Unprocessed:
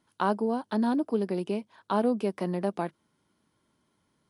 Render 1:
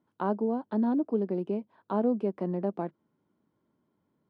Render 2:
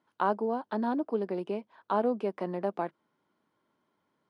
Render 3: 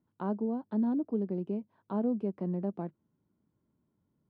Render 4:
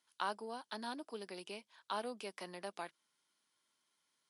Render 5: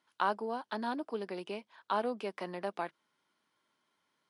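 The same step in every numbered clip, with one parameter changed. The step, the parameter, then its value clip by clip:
band-pass filter, frequency: 290 Hz, 790 Hz, 110 Hz, 5.9 kHz, 2.2 kHz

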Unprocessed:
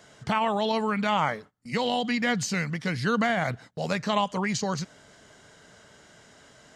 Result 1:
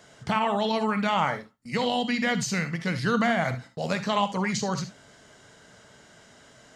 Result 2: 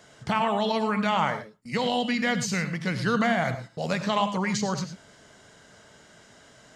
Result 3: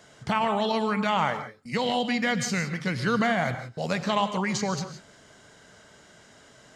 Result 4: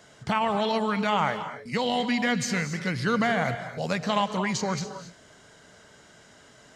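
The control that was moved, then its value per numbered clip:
gated-style reverb, gate: 90 ms, 130 ms, 190 ms, 300 ms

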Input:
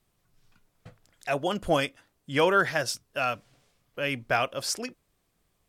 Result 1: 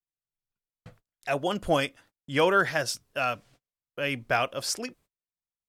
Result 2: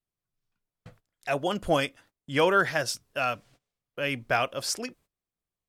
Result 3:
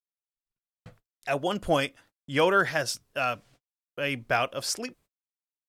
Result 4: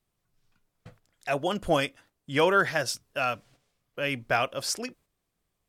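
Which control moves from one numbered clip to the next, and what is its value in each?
gate, range: -33 dB, -20 dB, -53 dB, -7 dB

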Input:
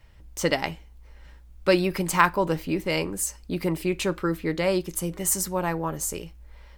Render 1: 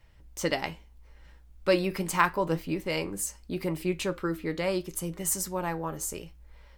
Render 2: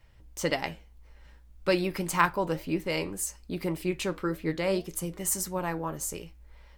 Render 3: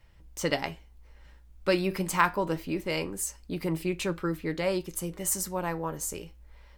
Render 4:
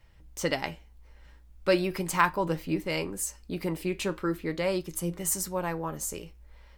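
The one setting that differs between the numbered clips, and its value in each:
flange, rate: 0.77 Hz, 1.8 Hz, 0.25 Hz, 0.39 Hz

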